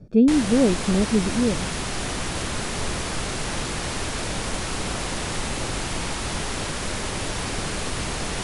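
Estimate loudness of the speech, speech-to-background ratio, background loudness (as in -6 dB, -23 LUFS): -21.0 LUFS, 7.0 dB, -28.0 LUFS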